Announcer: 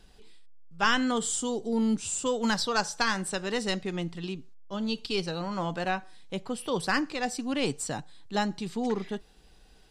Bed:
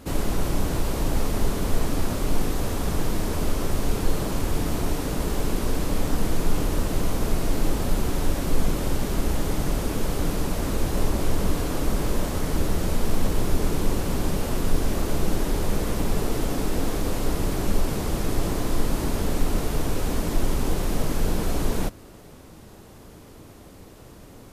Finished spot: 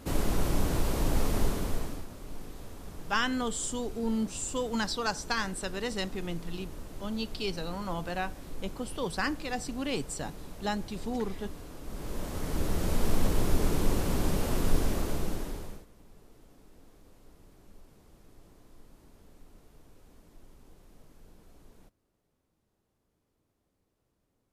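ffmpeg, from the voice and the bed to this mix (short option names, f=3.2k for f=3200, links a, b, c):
-filter_complex "[0:a]adelay=2300,volume=-4dB[a];[1:a]volume=12dB,afade=t=out:st=1.38:d=0.68:silence=0.16788,afade=t=in:st=11.83:d=1.22:silence=0.16788,afade=t=out:st=14.75:d=1.11:silence=0.0375837[b];[a][b]amix=inputs=2:normalize=0"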